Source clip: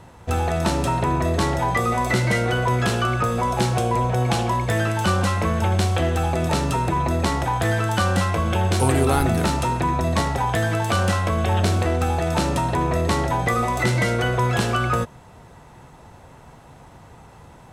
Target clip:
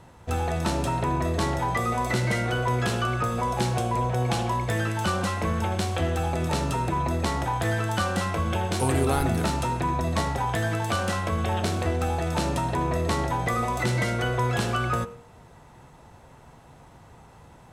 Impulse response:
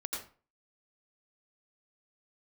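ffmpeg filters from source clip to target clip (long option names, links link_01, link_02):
-filter_complex "[0:a]bandreject=frequency=94.22:width_type=h:width=4,bandreject=frequency=188.44:width_type=h:width=4,bandreject=frequency=282.66:width_type=h:width=4,bandreject=frequency=376.88:width_type=h:width=4,bandreject=frequency=471.1:width_type=h:width=4,bandreject=frequency=565.32:width_type=h:width=4,bandreject=frequency=659.54:width_type=h:width=4,bandreject=frequency=753.76:width_type=h:width=4,bandreject=frequency=847.98:width_type=h:width=4,bandreject=frequency=942.2:width_type=h:width=4,bandreject=frequency=1036.42:width_type=h:width=4,bandreject=frequency=1130.64:width_type=h:width=4,bandreject=frequency=1224.86:width_type=h:width=4,bandreject=frequency=1319.08:width_type=h:width=4,bandreject=frequency=1413.3:width_type=h:width=4,bandreject=frequency=1507.52:width_type=h:width=4,bandreject=frequency=1601.74:width_type=h:width=4,bandreject=frequency=1695.96:width_type=h:width=4,bandreject=frequency=1790.18:width_type=h:width=4,bandreject=frequency=1884.4:width_type=h:width=4,bandreject=frequency=1978.62:width_type=h:width=4,bandreject=frequency=2072.84:width_type=h:width=4,bandreject=frequency=2167.06:width_type=h:width=4,bandreject=frequency=2261.28:width_type=h:width=4,bandreject=frequency=2355.5:width_type=h:width=4,bandreject=frequency=2449.72:width_type=h:width=4,bandreject=frequency=2543.94:width_type=h:width=4,bandreject=frequency=2638.16:width_type=h:width=4,bandreject=frequency=2732.38:width_type=h:width=4,bandreject=frequency=2826.6:width_type=h:width=4,bandreject=frequency=2920.82:width_type=h:width=4,bandreject=frequency=3015.04:width_type=h:width=4,asplit=2[link_01][link_02];[1:a]atrim=start_sample=2205[link_03];[link_02][link_03]afir=irnorm=-1:irlink=0,volume=-19.5dB[link_04];[link_01][link_04]amix=inputs=2:normalize=0,volume=-5dB"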